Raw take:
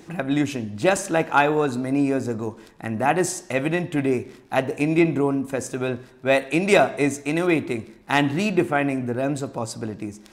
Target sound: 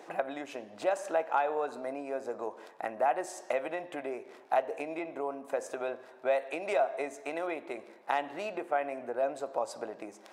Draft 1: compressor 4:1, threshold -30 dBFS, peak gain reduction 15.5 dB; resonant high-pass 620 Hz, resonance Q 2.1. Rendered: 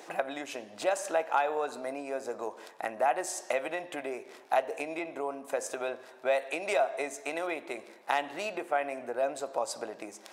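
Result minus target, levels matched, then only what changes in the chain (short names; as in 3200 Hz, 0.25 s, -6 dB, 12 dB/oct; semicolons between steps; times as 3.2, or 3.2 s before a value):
4000 Hz band +5.5 dB
add after resonant high-pass: high shelf 2600 Hz -10 dB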